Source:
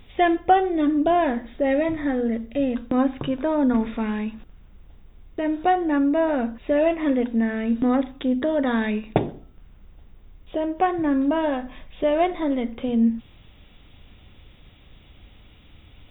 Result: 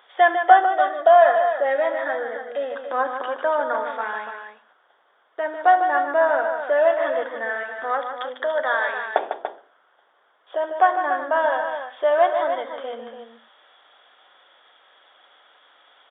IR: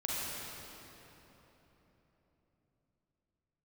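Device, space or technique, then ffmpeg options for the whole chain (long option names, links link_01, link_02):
musical greeting card: -filter_complex "[0:a]asettb=1/sr,asplit=3[link_01][link_02][link_03];[link_01]atrim=end=7.634[link_04];[link_02]atrim=start=7.63:end=8.98,asetpts=PTS-STARTPTS,afade=type=in:duration=0.004:curve=qsin,afade=type=out:start_time=1.346:duration=0.004:curve=qsin,highpass=frequency=470:poles=1[link_05];[link_03]atrim=start=8.976[link_06];[link_04][link_05]acrossfade=duration=0.004:curve1=hsin:curve2=qsin[link_07];[link_07][link_06]acrossfade=duration=0.004:curve1=qsin:curve2=hsin,highshelf=frequency=2000:width_type=q:width=3:gain=-7.5,asettb=1/sr,asplit=3[link_08][link_09][link_10];[link_08]atrim=end=0.634[link_11];[link_09]atrim=start=0.63:end=1.49,asetpts=PTS-STARTPTS,afade=type=in:duration=0.004:curve=qsin,afade=type=out:start_time=0.856:duration=0.004:curve=qsin,aecho=1:1:1.6:0.6,atrim=end_sample=37926[link_12];[link_10]atrim=start=1.486[link_13];[link_11][link_12]acrossfade=duration=0.004:curve1=hsin:curve2=qsin[link_14];[link_14][link_13]acrossfade=duration=0.004:curve1=qsin:curve2=hsin,aecho=1:1:71|150|289:0.126|0.398|0.376,aresample=8000,aresample=44100,highpass=frequency=580:width=0.5412,highpass=frequency=580:width=1.3066,equalizer=frequency=3300:width_type=o:width=0.23:gain=11.5,volume=4dB"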